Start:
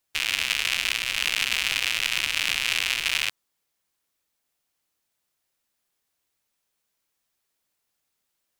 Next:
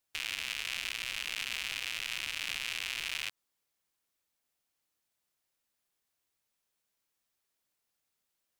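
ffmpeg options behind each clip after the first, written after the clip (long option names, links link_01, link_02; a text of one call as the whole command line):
ffmpeg -i in.wav -af "alimiter=limit=-13.5dB:level=0:latency=1:release=102,volume=-5dB" out.wav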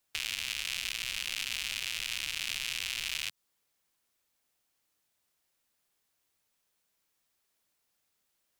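ffmpeg -i in.wav -filter_complex "[0:a]acrossover=split=180|3000[link_01][link_02][link_03];[link_02]acompressor=threshold=-45dB:ratio=3[link_04];[link_01][link_04][link_03]amix=inputs=3:normalize=0,volume=4.5dB" out.wav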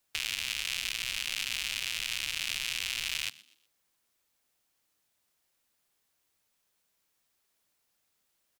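ffmpeg -i in.wav -filter_complex "[0:a]asplit=4[link_01][link_02][link_03][link_04];[link_02]adelay=123,afreqshift=100,volume=-21dB[link_05];[link_03]adelay=246,afreqshift=200,volume=-29.9dB[link_06];[link_04]adelay=369,afreqshift=300,volume=-38.7dB[link_07];[link_01][link_05][link_06][link_07]amix=inputs=4:normalize=0,volume=1.5dB" out.wav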